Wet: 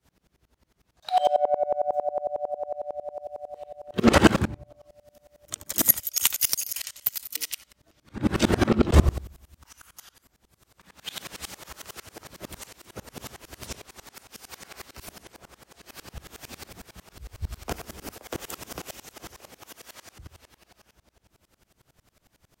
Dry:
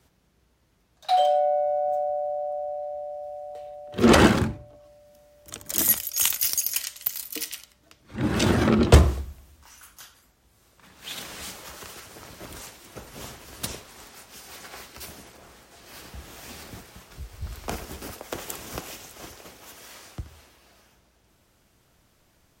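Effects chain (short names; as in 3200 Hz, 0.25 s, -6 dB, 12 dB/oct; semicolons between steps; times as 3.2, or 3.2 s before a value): dB-ramp tremolo swelling 11 Hz, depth 26 dB; gain +6.5 dB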